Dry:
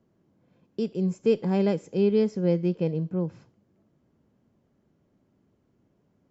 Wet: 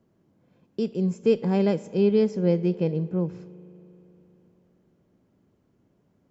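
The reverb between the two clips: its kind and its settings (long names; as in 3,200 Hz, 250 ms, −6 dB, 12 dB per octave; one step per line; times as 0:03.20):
spring reverb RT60 3.6 s, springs 39 ms, chirp 45 ms, DRR 18.5 dB
level +1.5 dB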